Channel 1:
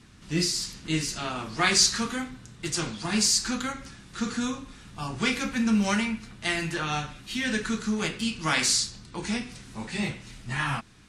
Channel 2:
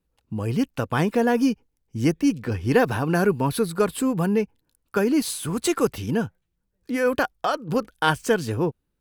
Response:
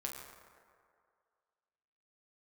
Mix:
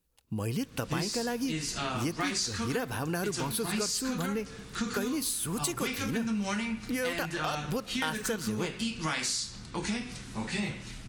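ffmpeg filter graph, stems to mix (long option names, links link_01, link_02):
-filter_complex "[0:a]adelay=600,volume=1.5dB,asplit=2[link_01][link_02];[link_02]volume=-21dB[link_03];[1:a]highshelf=frequency=3100:gain=11.5,volume=-4dB,asplit=2[link_04][link_05];[link_05]volume=-17dB[link_06];[2:a]atrim=start_sample=2205[link_07];[link_03][link_06]amix=inputs=2:normalize=0[link_08];[link_08][link_07]afir=irnorm=-1:irlink=0[link_09];[link_01][link_04][link_09]amix=inputs=3:normalize=0,acompressor=threshold=-29dB:ratio=6"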